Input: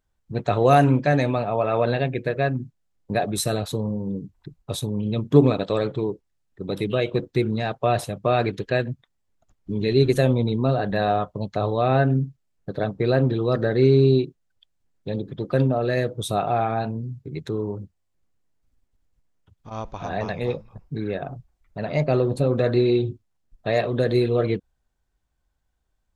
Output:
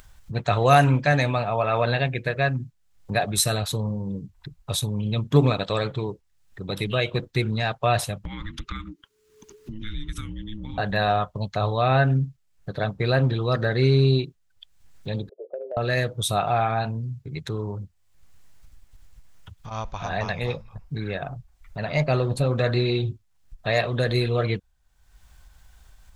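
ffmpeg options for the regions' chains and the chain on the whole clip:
ffmpeg -i in.wav -filter_complex "[0:a]asettb=1/sr,asplit=3[link_01][link_02][link_03];[link_01]atrim=end=8.244[link_04];[link_02]atrim=start=8.24:end=10.78,asetpts=PTS-STARTPTS,afade=type=in:duration=0.004:curve=qsin,afade=type=out:start_time=2.536:duration=0.004:curve=qsin,afreqshift=-430,acompressor=threshold=-31dB:ratio=5:attack=3.2:release=140:knee=1:detection=peak,asuperstop=centerf=700:order=4:qfactor=2.8[link_05];[link_03]atrim=start=10.776[link_06];[link_04][link_05]acrossfade=duration=0.004:curve1=hsin:curve2=qsin[link_07];[link_07][link_06]acrossfade=duration=0.004:curve1=qsin:curve2=hsin,asettb=1/sr,asplit=3[link_08][link_09][link_10];[link_08]atrim=end=15.294[link_11];[link_09]atrim=start=15.29:end=15.77,asetpts=PTS-STARTPTS,afade=type=in:duration=0.004:curve=qsin,afade=type=out:start_time=0.476:duration=0.004:curve=qsin,asuperpass=centerf=510:order=8:qfactor=1.9,acompressor=threshold=-25dB:ratio=6:attack=3.2:release=140:knee=1:detection=peak[link_12];[link_10]atrim=start=15.766[link_13];[link_11][link_12]acrossfade=duration=0.004:curve1=hsin:curve2=qsin[link_14];[link_14][link_13]acrossfade=duration=0.004:curve1=qsin:curve2=hsin,equalizer=frequency=330:width=0.62:gain=-12,acompressor=mode=upward:threshold=-39dB:ratio=2.5,volume=5.5dB" out.wav

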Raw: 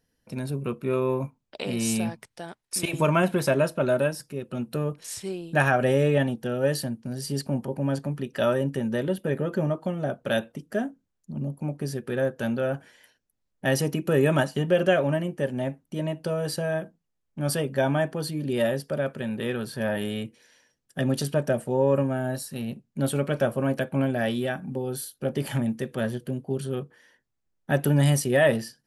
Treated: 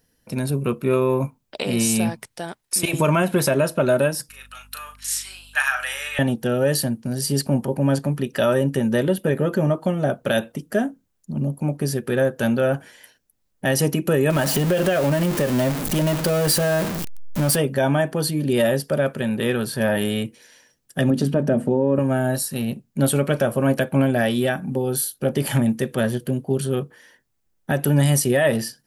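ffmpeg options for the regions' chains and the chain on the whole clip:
ffmpeg -i in.wav -filter_complex "[0:a]asettb=1/sr,asplit=3[link_01][link_02][link_03];[link_01]atrim=end=4.294[link_04];[link_02]atrim=start=4.29:end=6.19,asetpts=PTS-STARTPTS,afade=type=in:duration=0.004:curve=qsin,afade=type=out:start_time=1.896:duration=0.004:curve=qsin,highpass=frequency=1200:width=0.5412,highpass=frequency=1200:width=1.3066,aeval=exprs='val(0)+0.00126*(sin(2*PI*50*n/s)+sin(2*PI*2*50*n/s)/2+sin(2*PI*3*50*n/s)/3+sin(2*PI*4*50*n/s)/4+sin(2*PI*5*50*n/s)/5)':channel_layout=same,asplit=2[link_05][link_06];[link_06]adelay=37,volume=-6.5dB[link_07];[link_05][link_07]amix=inputs=2:normalize=0,atrim=end_sample=83790[link_08];[link_03]atrim=start=6.186[link_09];[link_04][link_08]acrossfade=duration=0.004:curve1=hsin:curve2=qsin[link_10];[link_10][link_09]acrossfade=duration=0.004:curve1=qsin:curve2=hsin,asettb=1/sr,asplit=3[link_11][link_12][link_13];[link_11]atrim=end=14.304[link_14];[link_12]atrim=start=14.3:end=17.56,asetpts=PTS-STARTPTS,afade=type=in:duration=0.004:curve=qsin,afade=type=out:start_time=3.256:duration=0.004:curve=qsin,aeval=exprs='val(0)+0.5*0.0398*sgn(val(0))':channel_layout=same,acompressor=threshold=-23dB:ratio=6:attack=3.2:release=140:knee=1:detection=peak[link_15];[link_13]atrim=start=17.556[link_16];[link_14][link_15]acrossfade=duration=0.004:curve1=hsin:curve2=qsin[link_17];[link_17][link_16]acrossfade=duration=0.004:curve1=qsin:curve2=hsin,asettb=1/sr,asplit=3[link_18][link_19][link_20];[link_18]atrim=end=21.104[link_21];[link_19]atrim=start=21.1:end=21.99,asetpts=PTS-STARTPTS,afade=type=in:duration=0.004:curve=qsin,afade=type=out:start_time=0.886:duration=0.004:curve=qsin,lowpass=frequency=2300:poles=1,equalizer=frequency=250:width=0.96:gain=10.5,bandreject=frequency=50:width_type=h:width=6,bandreject=frequency=100:width_type=h:width=6,bandreject=frequency=150:width_type=h:width=6,bandreject=frequency=200:width_type=h:width=6,bandreject=frequency=250:width_type=h:width=6[link_22];[link_20]atrim=start=21.986[link_23];[link_21][link_22]acrossfade=duration=0.004:curve1=hsin:curve2=qsin[link_24];[link_24][link_23]acrossfade=duration=0.004:curve1=qsin:curve2=hsin,highshelf=frequency=9100:gain=8.5,alimiter=limit=-16.5dB:level=0:latency=1:release=127,volume=7dB" out.wav

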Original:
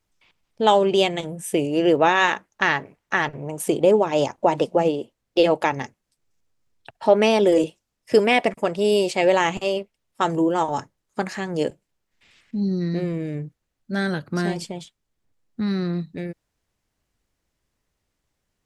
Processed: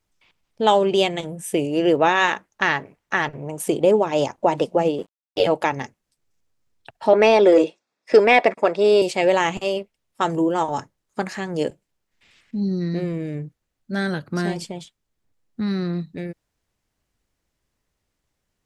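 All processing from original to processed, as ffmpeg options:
ffmpeg -i in.wav -filter_complex "[0:a]asettb=1/sr,asplit=3[link_01][link_02][link_03];[link_01]atrim=end=4.984[link_04];[link_02]atrim=start=4.98:end=5.47,asetpts=PTS-STARTPTS,afade=type=in:duration=0.004:curve=qsin,afade=type=out:start_time=0.486:duration=0.004:curve=qsin,aecho=1:1:4.5:0.96,atrim=end_sample=21609,aeval=exprs='sgn(val(0))*max(abs(val(0))-0.00398,0)':channel_layout=same,aeval=exprs='val(0)*sin(2*PI*48*n/s)':channel_layout=same[link_05];[link_03]atrim=start=5.466[link_06];[link_04][link_05]acrossfade=duration=0.004:curve1=hsin:curve2=qsin[link_07];[link_07][link_06]acrossfade=duration=0.004:curve1=qsin:curve2=hsin,asettb=1/sr,asplit=3[link_08][link_09][link_10];[link_08]atrim=end=7.134[link_11];[link_09]atrim=start=7.13:end=9.02,asetpts=PTS-STARTPTS,afade=type=in:duration=0.004:curve=qsin,afade=type=out:start_time=1.886:duration=0.004:curve=qsin,highpass=330,lowpass=4400,bandreject=frequency=3000:width=6,acontrast=42[link_12];[link_10]atrim=start=9.016[link_13];[link_11][link_12]acrossfade=duration=0.004:curve1=hsin:curve2=qsin[link_14];[link_14][link_13]acrossfade=duration=0.004:curve1=qsin:curve2=hsin" out.wav

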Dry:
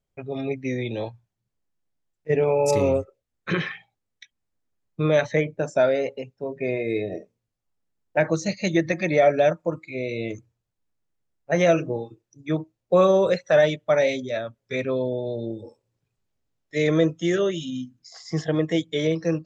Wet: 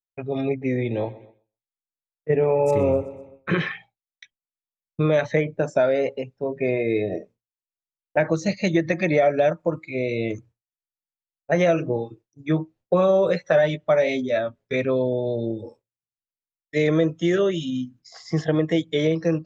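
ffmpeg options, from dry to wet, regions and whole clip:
ffmpeg -i in.wav -filter_complex "[0:a]asettb=1/sr,asplit=3[link_01][link_02][link_03];[link_01]atrim=end=0.494[link_04];[link_02]atrim=start=0.49:end=3.53,asetpts=PTS-STARTPTS,afade=type=in:duration=0.004:curve=qsin,afade=type=out:start_time=3.036:duration=0.004:curve=qsin,equalizer=frequency=4900:width_type=o:width=0.93:gain=-14.5,aecho=1:1:126|252|378|504:0.112|0.0561|0.0281|0.014,atrim=end_sample=134064[link_05];[link_03]atrim=start=3.526[link_06];[link_04][link_05]acrossfade=duration=0.004:curve1=hsin:curve2=qsin[link_07];[link_07][link_06]acrossfade=duration=0.004:curve1=qsin:curve2=hsin,asettb=1/sr,asplit=3[link_08][link_09][link_10];[link_08]atrim=end=12.494[link_11];[link_09]atrim=start=12.49:end=14.74,asetpts=PTS-STARTPTS,afade=type=in:duration=0.004:curve=qsin,afade=type=out:start_time=2.246:duration=0.004:curve=qsin,highshelf=frequency=6700:gain=-5,asplit=2[link_12][link_13];[link_13]adelay=12,volume=-7dB[link_14];[link_12][link_14]amix=inputs=2:normalize=0,atrim=end_sample=99225[link_15];[link_10]atrim=start=14.736[link_16];[link_11][link_15]acrossfade=duration=0.004:curve1=hsin:curve2=qsin[link_17];[link_17][link_16]acrossfade=duration=0.004:curve1=qsin:curve2=hsin,agate=range=-33dB:threshold=-47dB:ratio=3:detection=peak,lowpass=frequency=3600:poles=1,acompressor=threshold=-21dB:ratio=2.5,volume=4dB" out.wav

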